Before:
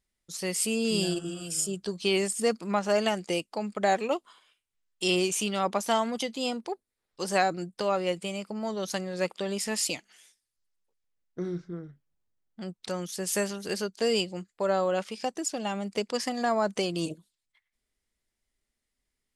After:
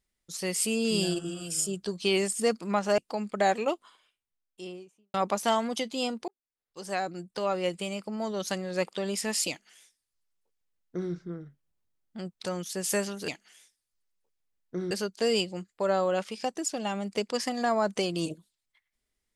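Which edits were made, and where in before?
2.98–3.41 s: delete
4.09–5.57 s: studio fade out
6.71–8.19 s: fade in
9.92–11.55 s: copy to 13.71 s

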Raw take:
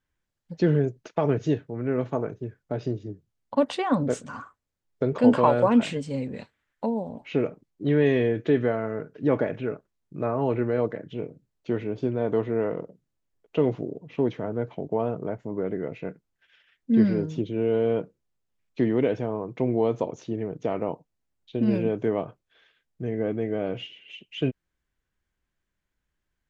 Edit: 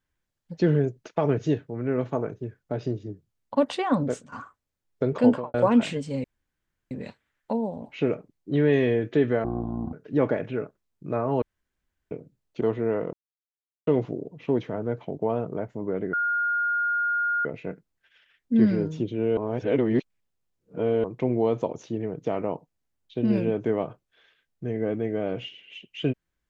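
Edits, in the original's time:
4.02–4.32 s: fade out, to -14 dB
5.21–5.54 s: studio fade out
6.24 s: insert room tone 0.67 s
8.77–9.03 s: speed 53%
10.52–11.21 s: room tone
11.71–12.31 s: delete
12.83–13.57 s: mute
15.83 s: add tone 1.42 kHz -22 dBFS 1.32 s
17.75–19.42 s: reverse

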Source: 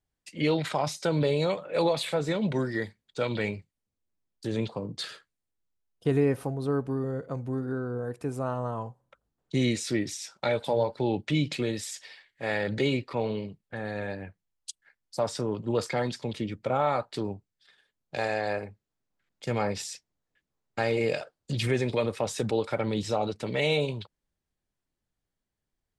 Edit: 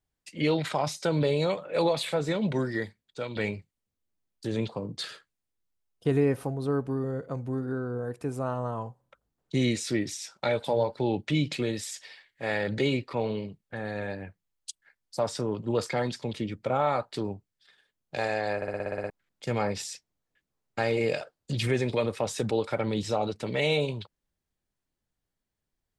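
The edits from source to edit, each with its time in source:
2.76–3.36 s: fade out, to -8 dB
18.56 s: stutter in place 0.06 s, 9 plays

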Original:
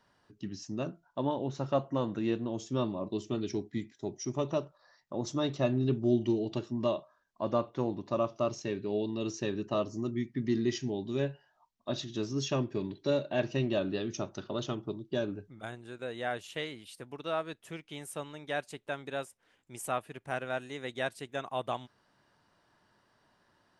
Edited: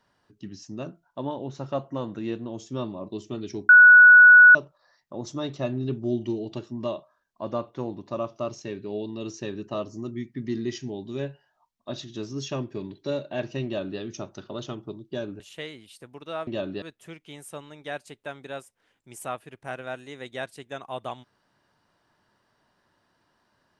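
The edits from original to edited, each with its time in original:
3.69–4.55 s: bleep 1.47 kHz -7.5 dBFS
13.65–14.00 s: copy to 17.45 s
15.40–16.38 s: delete

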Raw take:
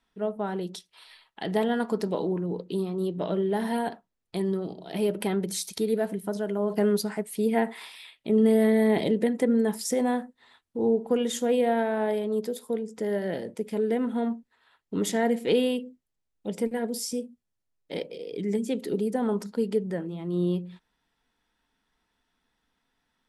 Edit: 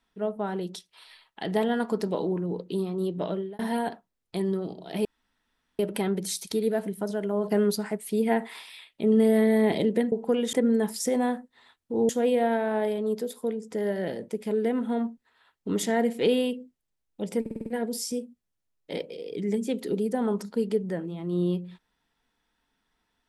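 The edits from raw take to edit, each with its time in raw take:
3.25–3.59 s: fade out
5.05 s: insert room tone 0.74 s
10.94–11.35 s: move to 9.38 s
16.67 s: stutter 0.05 s, 6 plays

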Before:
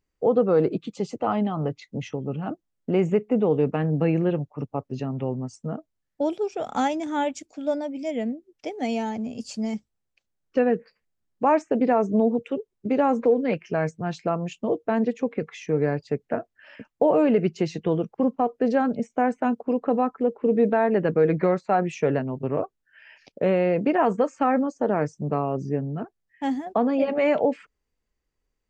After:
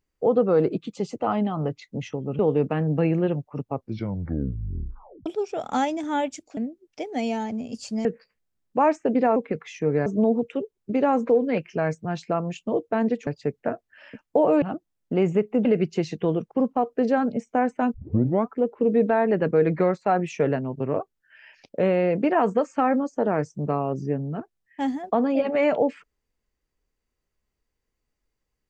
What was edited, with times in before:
2.39–3.42 s: move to 17.28 s
4.74 s: tape stop 1.55 s
7.60–8.23 s: delete
9.71–10.71 s: delete
15.23–15.93 s: move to 12.02 s
19.57 s: tape start 0.55 s

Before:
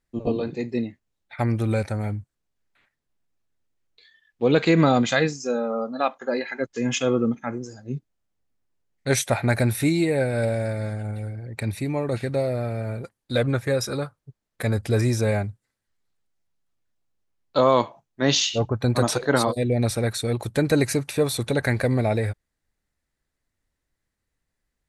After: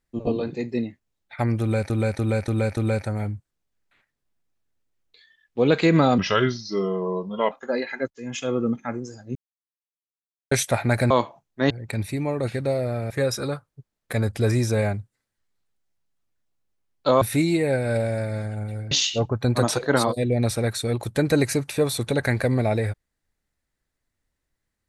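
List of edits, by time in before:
1.61–1.90 s: loop, 5 plays
5.02–6.10 s: speed 81%
6.69–7.37 s: fade in, from -16 dB
7.94–9.10 s: mute
9.69–11.39 s: swap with 17.71–18.31 s
12.79–13.60 s: delete

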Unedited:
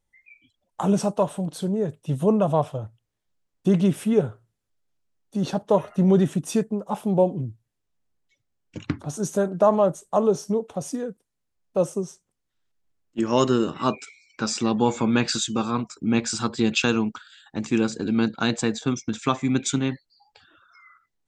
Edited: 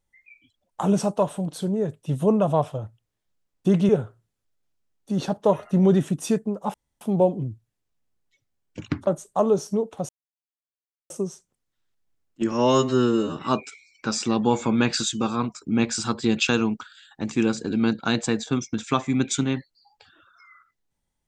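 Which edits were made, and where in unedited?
3.89–4.14 s: delete
6.99 s: insert room tone 0.27 s
9.05–9.84 s: delete
10.86–11.87 s: mute
13.29–13.71 s: stretch 2×

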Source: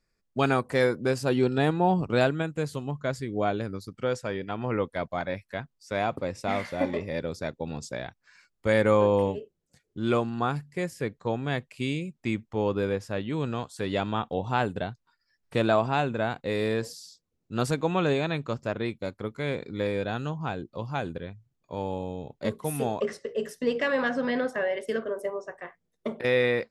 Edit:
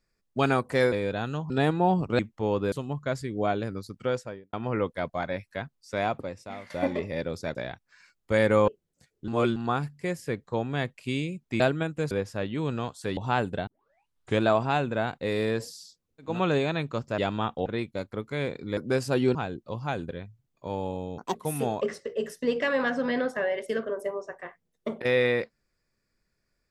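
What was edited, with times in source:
0.92–1.50 s: swap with 19.84–20.42 s
2.19–2.70 s: swap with 12.33–12.86 s
4.07–4.51 s: studio fade out
6.07–6.68 s: fade out quadratic, to -13.5 dB
7.53–7.90 s: delete
9.03–9.41 s: delete
10.01–10.29 s: reverse
13.92–14.40 s: move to 18.73 s
14.90 s: tape start 0.74 s
17.53–17.85 s: delete, crossfade 0.24 s
22.25–22.54 s: speed 173%

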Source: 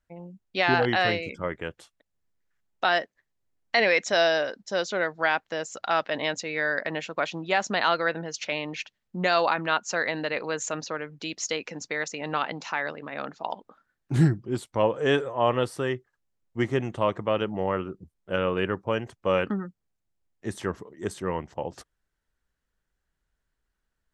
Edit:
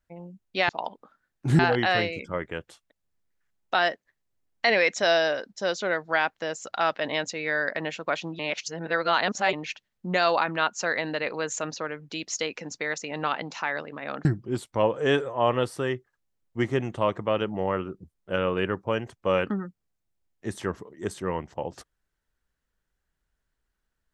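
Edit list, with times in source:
7.49–8.63 s: reverse
13.35–14.25 s: move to 0.69 s

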